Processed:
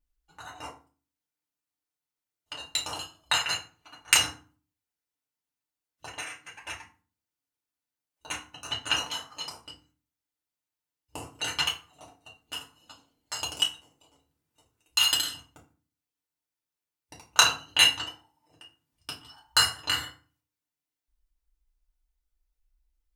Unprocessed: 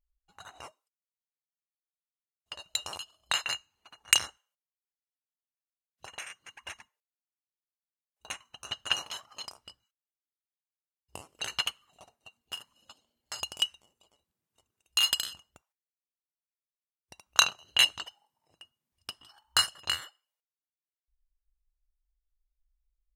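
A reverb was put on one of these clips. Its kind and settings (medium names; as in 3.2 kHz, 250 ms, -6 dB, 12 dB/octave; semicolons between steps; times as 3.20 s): FDN reverb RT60 0.37 s, low-frequency decay 1.55×, high-frequency decay 0.7×, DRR -4 dB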